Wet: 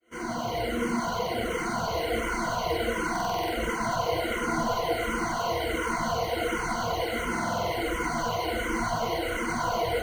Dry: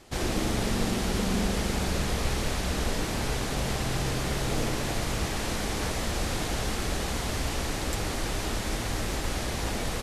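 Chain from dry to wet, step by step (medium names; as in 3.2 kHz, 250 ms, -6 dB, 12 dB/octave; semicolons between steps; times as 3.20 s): fade-in on the opening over 2.21 s; overdrive pedal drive 36 dB, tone 1.3 kHz, clips at -14.5 dBFS; rippled EQ curve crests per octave 1.9, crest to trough 17 dB; in parallel at -8 dB: sample-rate reducer 5.3 kHz, jitter 0%; on the sum: reverb removal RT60 0.82 s; on a send: band-passed feedback delay 97 ms, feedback 83%, band-pass 920 Hz, level -4.5 dB; on the sum: buffer glitch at 3.11/7.30 s, samples 2048, times 8; barber-pole phaser -1.4 Hz; trim -5.5 dB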